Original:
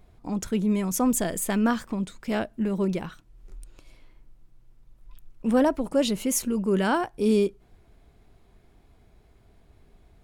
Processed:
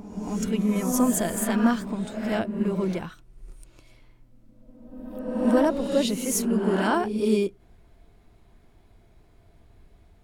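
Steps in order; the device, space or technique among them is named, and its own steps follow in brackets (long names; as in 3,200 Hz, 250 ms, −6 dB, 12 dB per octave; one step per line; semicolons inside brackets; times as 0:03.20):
reverse reverb (reversed playback; convolution reverb RT60 1.3 s, pre-delay 3 ms, DRR 3 dB; reversed playback)
level −1 dB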